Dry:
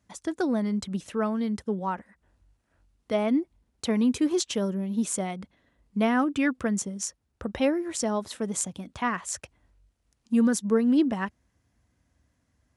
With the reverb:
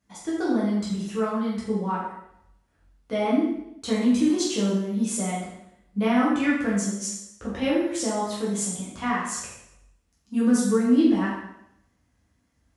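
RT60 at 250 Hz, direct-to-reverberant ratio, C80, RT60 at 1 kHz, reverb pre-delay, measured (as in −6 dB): 0.80 s, −7.5 dB, 4.0 dB, 0.75 s, 4 ms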